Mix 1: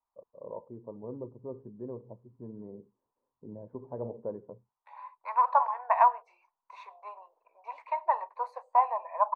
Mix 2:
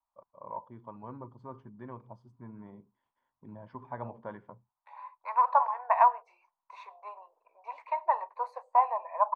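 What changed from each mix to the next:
first voice: remove synth low-pass 460 Hz, resonance Q 3.7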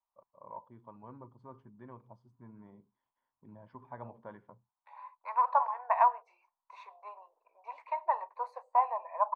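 first voice -6.0 dB; second voice -3.0 dB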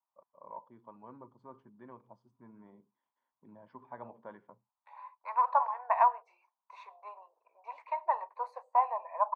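master: add HPF 190 Hz 12 dB/oct

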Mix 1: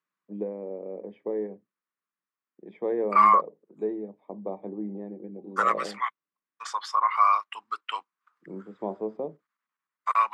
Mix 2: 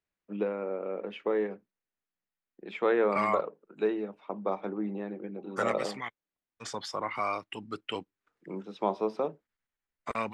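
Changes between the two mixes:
first voice: remove running mean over 32 samples; second voice: remove resonant high-pass 1100 Hz, resonance Q 5.5

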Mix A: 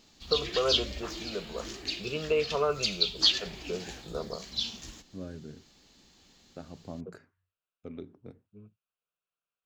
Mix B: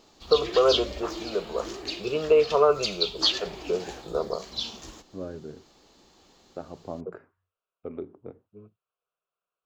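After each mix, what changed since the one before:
second voice: add polynomial smoothing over 25 samples; master: add band shelf 650 Hz +8.5 dB 2.3 oct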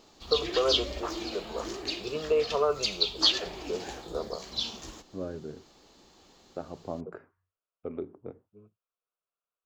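first voice -6.5 dB

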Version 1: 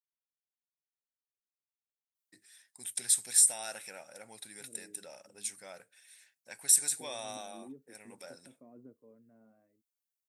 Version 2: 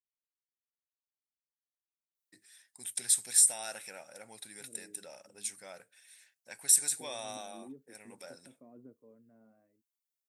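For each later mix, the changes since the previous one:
none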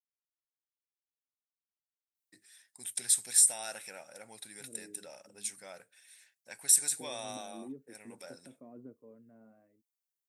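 second voice +4.0 dB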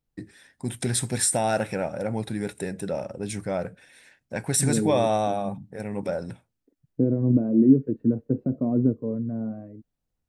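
first voice: entry -2.15 s; master: remove differentiator

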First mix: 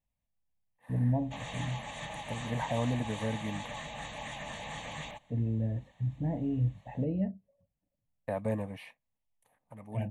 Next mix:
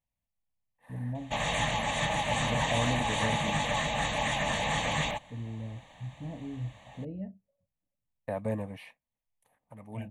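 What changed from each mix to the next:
first voice -7.5 dB; background +11.5 dB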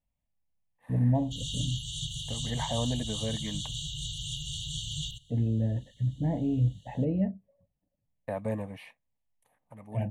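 first voice +11.0 dB; background: add brick-wall FIR band-stop 160–2800 Hz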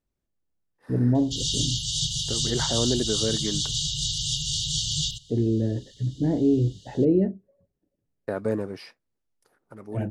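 background +4.0 dB; master: remove fixed phaser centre 1400 Hz, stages 6

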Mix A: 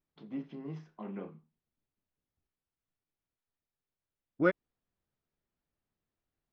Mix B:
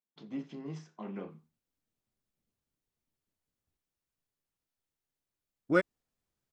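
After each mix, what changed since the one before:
second voice: entry +1.30 s; master: remove air absorption 220 m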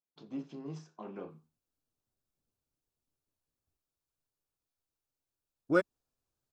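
master: add thirty-one-band EQ 200 Hz -8 dB, 2000 Hz -11 dB, 3150 Hz -4 dB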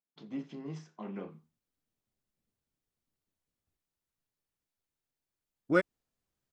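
master: add thirty-one-band EQ 200 Hz +8 dB, 2000 Hz +11 dB, 3150 Hz +4 dB

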